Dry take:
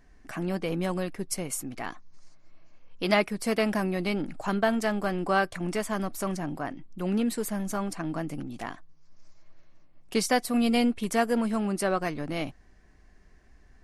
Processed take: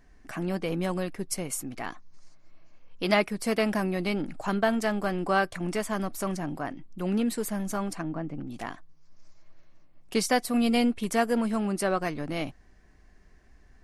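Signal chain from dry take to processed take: 8.03–8.47 tape spacing loss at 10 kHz 32 dB

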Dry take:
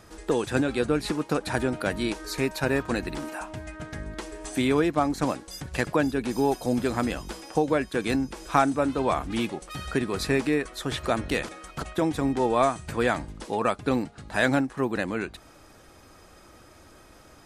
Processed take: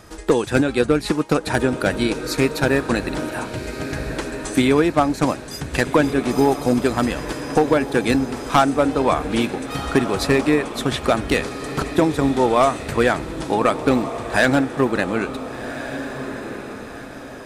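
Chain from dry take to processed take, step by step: transient shaper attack +4 dB, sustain -2 dB; overloaded stage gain 13 dB; diffused feedback echo 1.489 s, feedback 42%, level -10.5 dB; gain +6 dB

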